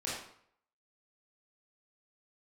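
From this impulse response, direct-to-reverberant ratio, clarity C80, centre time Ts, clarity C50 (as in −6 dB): −7.5 dB, 4.5 dB, 59 ms, 0.0 dB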